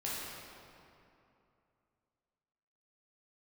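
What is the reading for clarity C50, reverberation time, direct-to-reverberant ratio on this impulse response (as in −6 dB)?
−3.0 dB, 2.7 s, −7.5 dB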